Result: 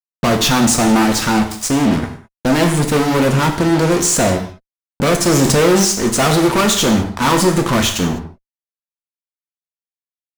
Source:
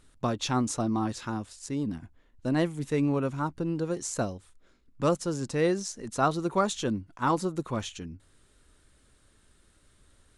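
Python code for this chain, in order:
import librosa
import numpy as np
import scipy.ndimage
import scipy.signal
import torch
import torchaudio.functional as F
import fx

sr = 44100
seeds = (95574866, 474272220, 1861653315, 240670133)

y = fx.fuzz(x, sr, gain_db=43.0, gate_db=-44.0)
y = fx.rev_gated(y, sr, seeds[0], gate_ms=230, shape='falling', drr_db=3.0)
y = fx.env_flatten(y, sr, amount_pct=50, at=(5.26, 5.85))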